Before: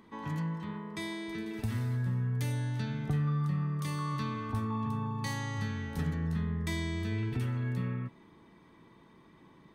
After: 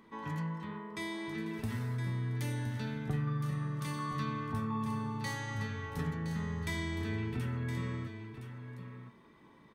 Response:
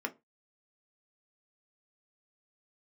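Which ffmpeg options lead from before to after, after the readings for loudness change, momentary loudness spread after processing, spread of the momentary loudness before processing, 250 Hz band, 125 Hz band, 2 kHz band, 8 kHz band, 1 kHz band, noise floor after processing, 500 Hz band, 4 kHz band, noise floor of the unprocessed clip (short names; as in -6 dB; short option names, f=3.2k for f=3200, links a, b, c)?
-3.0 dB, 11 LU, 7 LU, -2.5 dB, -3.5 dB, +0.5 dB, -1.5 dB, -0.5 dB, -59 dBFS, -0.5 dB, -1.5 dB, -59 dBFS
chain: -filter_complex "[0:a]asplit=2[a][b];[b]aecho=0:1:1016:0.335[c];[a][c]amix=inputs=2:normalize=0,flanger=delay=6.2:depth=3.2:regen=-75:speed=0.48:shape=sinusoidal,asplit=2[d][e];[1:a]atrim=start_sample=2205[f];[e][f]afir=irnorm=-1:irlink=0,volume=-10.5dB[g];[d][g]amix=inputs=2:normalize=0,volume=1dB"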